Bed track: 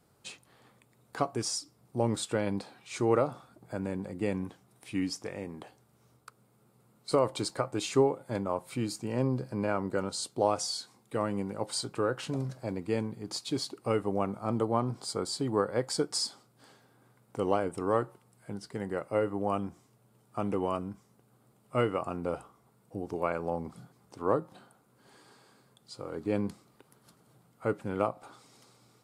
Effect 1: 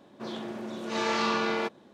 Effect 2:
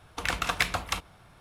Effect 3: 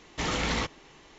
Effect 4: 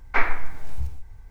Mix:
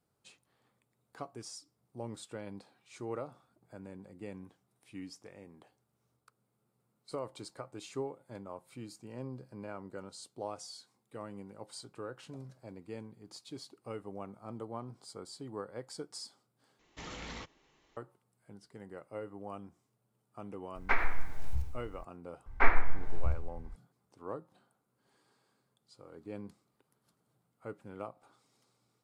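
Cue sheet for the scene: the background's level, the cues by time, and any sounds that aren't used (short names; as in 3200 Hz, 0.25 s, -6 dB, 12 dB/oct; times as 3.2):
bed track -13.5 dB
16.79 replace with 3 -15.5 dB
20.75 add 4 -14.5 dB + maximiser +9.5 dB
22.46 add 4 -2 dB + LPF 1700 Hz 6 dB/oct
not used: 1, 2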